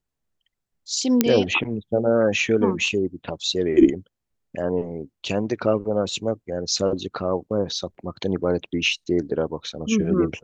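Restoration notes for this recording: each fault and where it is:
0:01.21: click −2 dBFS

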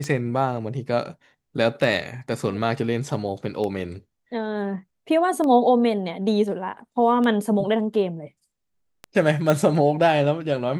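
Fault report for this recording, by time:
scratch tick 33 1/3 rpm −17 dBFS
0:09.50: click −8 dBFS

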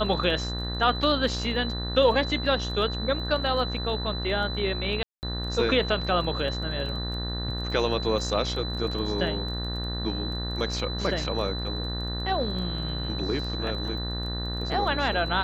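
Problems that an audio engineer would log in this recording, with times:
mains buzz 60 Hz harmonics 32 −32 dBFS
surface crackle 14 per second −35 dBFS
whistle 4,000 Hz −34 dBFS
0:05.03–0:05.23: drop-out 199 ms

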